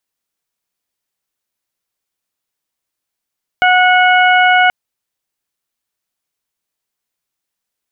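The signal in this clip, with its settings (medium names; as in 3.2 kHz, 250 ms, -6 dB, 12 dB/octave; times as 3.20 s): steady additive tone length 1.08 s, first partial 732 Hz, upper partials -1/-5/-9.5 dB, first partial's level -10 dB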